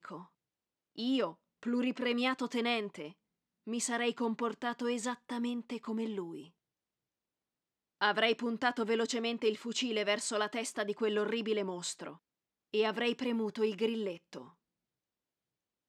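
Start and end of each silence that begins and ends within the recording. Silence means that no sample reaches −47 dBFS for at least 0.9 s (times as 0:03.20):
0:06.46–0:08.01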